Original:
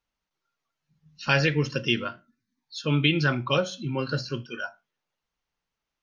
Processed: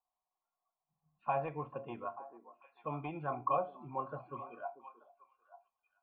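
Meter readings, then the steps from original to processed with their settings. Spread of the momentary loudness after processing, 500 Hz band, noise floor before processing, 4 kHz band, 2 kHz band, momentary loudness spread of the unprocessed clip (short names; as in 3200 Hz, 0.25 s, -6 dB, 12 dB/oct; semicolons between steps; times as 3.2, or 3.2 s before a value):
17 LU, -10.5 dB, under -85 dBFS, under -35 dB, -24.5 dB, 14 LU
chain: soft clip -11.5 dBFS, distortion -20 dB; vocal tract filter a; delay with a stepping band-pass 0.442 s, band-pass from 360 Hz, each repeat 1.4 oct, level -11 dB; gain +8 dB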